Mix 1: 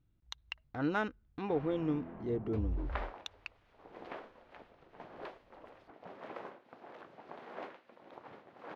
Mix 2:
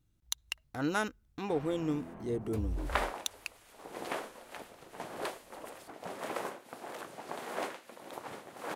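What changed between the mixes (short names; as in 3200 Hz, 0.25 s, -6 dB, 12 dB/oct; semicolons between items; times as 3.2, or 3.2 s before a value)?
second sound +7.0 dB; master: remove air absorption 280 m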